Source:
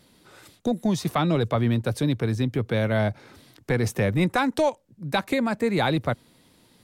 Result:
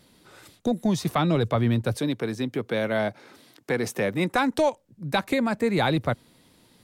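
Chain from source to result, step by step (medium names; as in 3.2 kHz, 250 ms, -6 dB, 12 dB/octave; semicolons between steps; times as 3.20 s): 1.97–4.34 s: high-pass 220 Hz 12 dB/octave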